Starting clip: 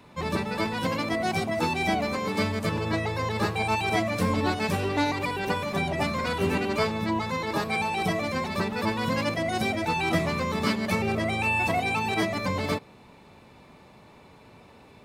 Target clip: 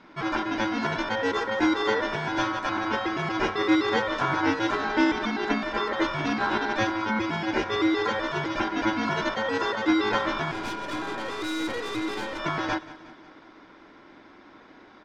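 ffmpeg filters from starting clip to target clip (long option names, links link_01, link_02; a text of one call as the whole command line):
ffmpeg -i in.wav -filter_complex "[0:a]lowpass=frequency=5100:width=0.5412,lowpass=frequency=5100:width=1.3066,aeval=exprs='val(0)*sin(2*PI*1200*n/s)':channel_layout=same,asettb=1/sr,asplit=3[link_01][link_02][link_03];[link_01]atrim=end=10.514[link_04];[link_02]atrim=start=10.51:end=12.39,asetpts=PTS-STARTPTS,afade=type=in:duration=0.004:curve=qsin,afade=type=out:start_time=1.876:duration=0.004:curve=qsin,aeval=exprs='(tanh(35.5*val(0)+0.65)-tanh(0.65))/35.5':channel_layout=same[link_05];[link_03]atrim=start=12.386[link_06];[link_04][link_05]acrossfade=duration=0.004:curve1=hsin:curve2=qsin[link_07];[link_07][link_06]acrossfade=duration=0.004:curve1=qsin:curve2=hsin,equalizer=frequency=300:width_type=o:width=1.2:gain=14.5,asplit=2[link_08][link_09];[link_09]aecho=0:1:182|364|546|728|910:0.133|0.0733|0.0403|0.0222|0.0122[link_10];[link_08][link_10]amix=inputs=2:normalize=0" out.wav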